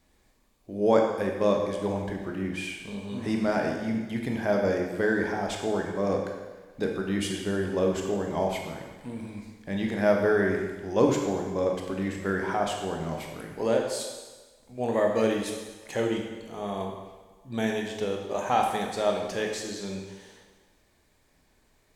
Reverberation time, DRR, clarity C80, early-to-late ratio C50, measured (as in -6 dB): 1.3 s, 1.0 dB, 5.5 dB, 3.5 dB